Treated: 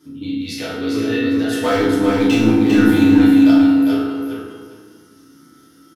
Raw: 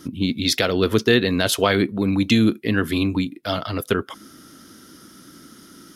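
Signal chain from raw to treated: HPF 72 Hz; 1.63–3.51 sample leveller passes 3; resonator bank C#2 minor, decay 0.38 s; feedback echo 0.401 s, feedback 20%, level -4.5 dB; FDN reverb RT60 1.5 s, low-frequency decay 1.3×, high-frequency decay 0.45×, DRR -6 dB; gain -1 dB

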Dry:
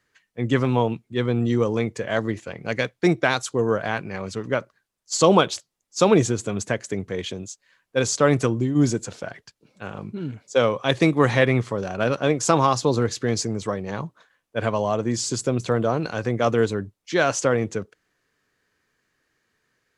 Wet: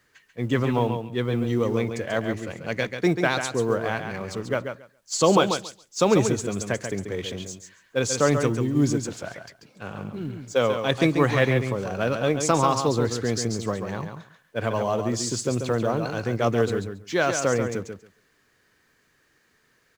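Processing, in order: G.711 law mismatch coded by mu; feedback echo 0.138 s, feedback 15%, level -7 dB; gain -3 dB

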